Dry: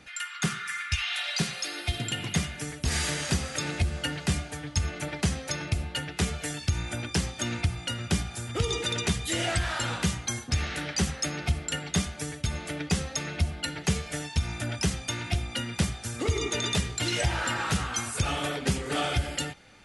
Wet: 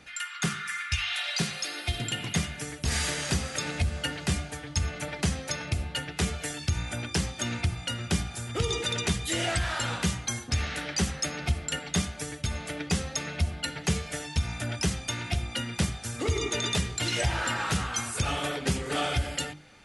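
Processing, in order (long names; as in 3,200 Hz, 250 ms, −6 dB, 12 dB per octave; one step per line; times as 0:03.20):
mains-hum notches 50/100/150/200/250/300/350 Hz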